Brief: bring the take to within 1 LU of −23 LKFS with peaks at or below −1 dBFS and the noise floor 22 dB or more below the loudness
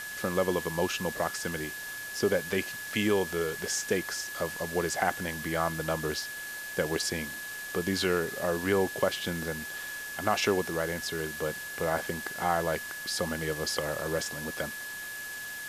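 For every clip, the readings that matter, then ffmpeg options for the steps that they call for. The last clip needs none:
interfering tone 1,700 Hz; level of the tone −38 dBFS; background noise floor −40 dBFS; target noise floor −53 dBFS; integrated loudness −31.0 LKFS; sample peak −10.5 dBFS; target loudness −23.0 LKFS
→ -af "bandreject=frequency=1700:width=30"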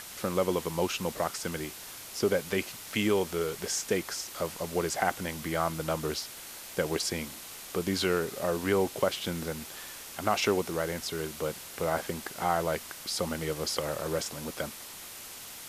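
interfering tone none found; background noise floor −45 dBFS; target noise floor −54 dBFS
→ -af "afftdn=noise_reduction=9:noise_floor=-45"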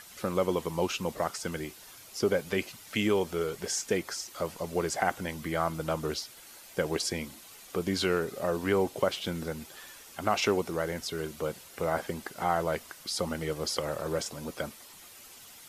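background noise floor −51 dBFS; target noise floor −54 dBFS
→ -af "afftdn=noise_reduction=6:noise_floor=-51"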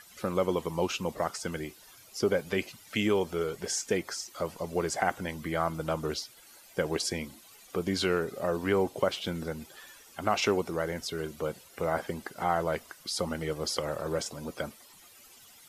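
background noise floor −55 dBFS; integrated loudness −31.5 LKFS; sample peak −11.5 dBFS; target loudness −23.0 LKFS
→ -af "volume=8.5dB"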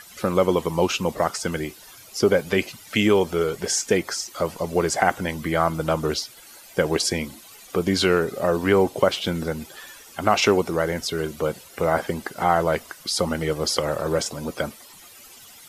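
integrated loudness −23.0 LKFS; sample peak −3.0 dBFS; background noise floor −47 dBFS

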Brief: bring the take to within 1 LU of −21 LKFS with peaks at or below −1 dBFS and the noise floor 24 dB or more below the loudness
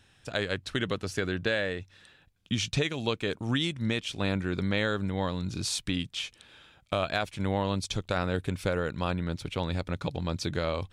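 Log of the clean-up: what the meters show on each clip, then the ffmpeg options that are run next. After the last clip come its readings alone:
integrated loudness −31.0 LKFS; sample peak −15.0 dBFS; target loudness −21.0 LKFS
→ -af "volume=10dB"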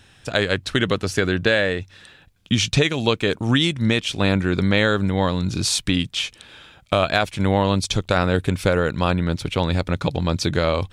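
integrated loudness −21.0 LKFS; sample peak −5.0 dBFS; background noise floor −52 dBFS

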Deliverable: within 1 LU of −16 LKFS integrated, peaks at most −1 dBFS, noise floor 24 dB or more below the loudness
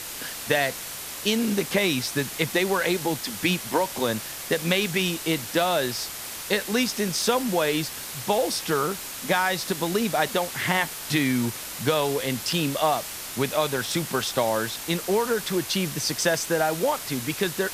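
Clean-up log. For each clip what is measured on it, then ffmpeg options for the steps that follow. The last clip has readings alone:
background noise floor −36 dBFS; target noise floor −49 dBFS; integrated loudness −25.0 LKFS; sample peak −6.5 dBFS; target loudness −16.0 LKFS
→ -af "afftdn=noise_reduction=13:noise_floor=-36"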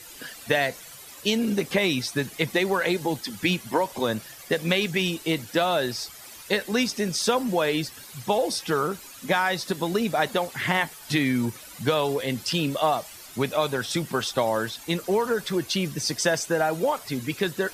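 background noise floor −44 dBFS; target noise floor −50 dBFS
→ -af "afftdn=noise_reduction=6:noise_floor=-44"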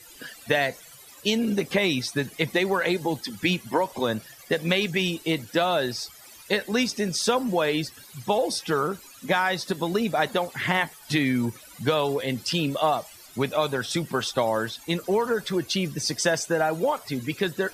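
background noise floor −48 dBFS; target noise floor −50 dBFS
→ -af "afftdn=noise_reduction=6:noise_floor=-48"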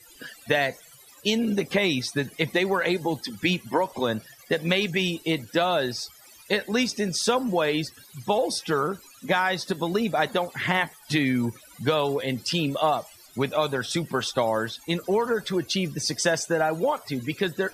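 background noise floor −51 dBFS; integrated loudness −25.5 LKFS; sample peak −7.0 dBFS; target loudness −16.0 LKFS
→ -af "volume=9.5dB,alimiter=limit=-1dB:level=0:latency=1"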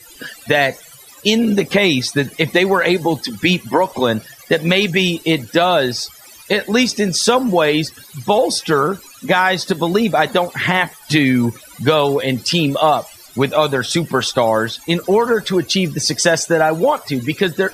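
integrated loudness −16.5 LKFS; sample peak −1.0 dBFS; background noise floor −42 dBFS

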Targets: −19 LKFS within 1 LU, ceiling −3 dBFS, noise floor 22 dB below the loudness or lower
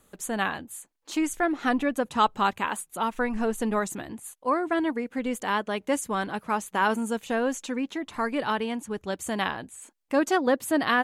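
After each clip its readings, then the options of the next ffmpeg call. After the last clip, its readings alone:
integrated loudness −27.5 LKFS; sample peak −8.5 dBFS; target loudness −19.0 LKFS
→ -af "volume=8.5dB,alimiter=limit=-3dB:level=0:latency=1"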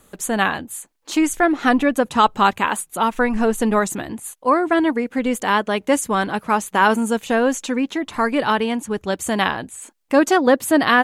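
integrated loudness −19.5 LKFS; sample peak −3.0 dBFS; background noise floor −59 dBFS

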